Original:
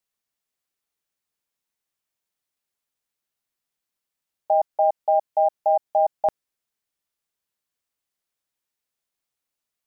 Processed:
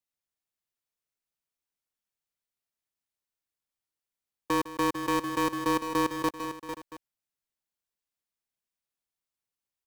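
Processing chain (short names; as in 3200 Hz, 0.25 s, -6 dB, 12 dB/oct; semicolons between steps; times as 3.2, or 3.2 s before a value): cycle switcher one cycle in 2, inverted; low shelf 130 Hz +5 dB; tapped delay 0.155/0.45/0.529/0.679 s -15.5/-9/-18/-16.5 dB; gain -8 dB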